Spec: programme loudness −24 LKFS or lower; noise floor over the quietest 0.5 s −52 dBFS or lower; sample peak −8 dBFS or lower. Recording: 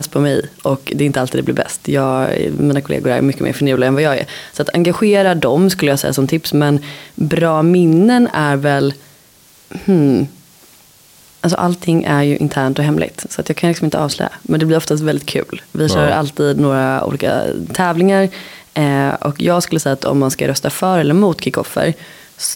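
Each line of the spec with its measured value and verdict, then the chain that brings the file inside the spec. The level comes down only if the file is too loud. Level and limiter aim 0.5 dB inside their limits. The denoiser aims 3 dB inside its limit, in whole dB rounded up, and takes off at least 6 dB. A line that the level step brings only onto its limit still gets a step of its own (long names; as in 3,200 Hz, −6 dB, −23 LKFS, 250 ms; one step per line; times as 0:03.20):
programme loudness −15.0 LKFS: out of spec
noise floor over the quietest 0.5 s −47 dBFS: out of spec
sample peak −3.0 dBFS: out of spec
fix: level −9.5 dB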